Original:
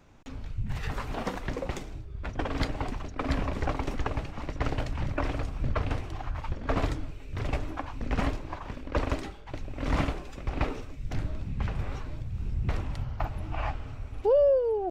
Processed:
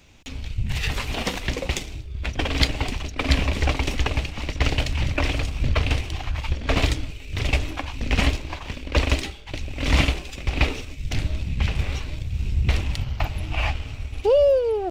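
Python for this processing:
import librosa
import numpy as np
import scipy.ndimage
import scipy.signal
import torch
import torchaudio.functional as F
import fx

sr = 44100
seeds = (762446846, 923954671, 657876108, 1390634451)

p1 = fx.high_shelf_res(x, sr, hz=1900.0, db=9.5, q=1.5)
p2 = np.sign(p1) * np.maximum(np.abs(p1) - 10.0 ** (-38.0 / 20.0), 0.0)
p3 = p1 + (p2 * 10.0 ** (-5.5 / 20.0))
p4 = fx.peak_eq(p3, sr, hz=68.0, db=8.0, octaves=0.48)
y = p4 * 10.0 ** (2.0 / 20.0)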